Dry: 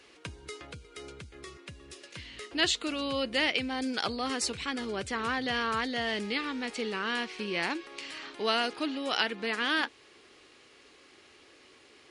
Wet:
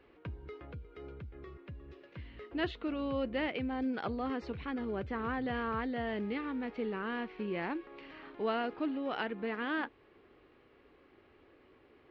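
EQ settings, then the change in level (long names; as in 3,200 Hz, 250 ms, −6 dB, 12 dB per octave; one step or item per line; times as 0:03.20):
high-frequency loss of the air 140 metres
head-to-tape spacing loss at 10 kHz 42 dB
low-shelf EQ 67 Hz +9 dB
0.0 dB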